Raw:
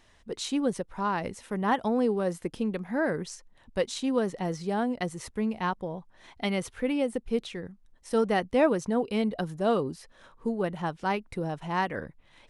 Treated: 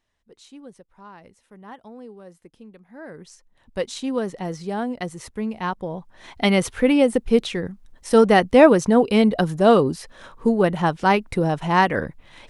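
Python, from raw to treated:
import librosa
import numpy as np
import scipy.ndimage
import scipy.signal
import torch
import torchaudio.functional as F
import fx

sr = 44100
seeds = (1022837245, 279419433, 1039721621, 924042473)

y = fx.gain(x, sr, db=fx.line((2.89, -15.0), (3.24, -7.0), (3.81, 2.0), (5.55, 2.0), (6.49, 11.0)))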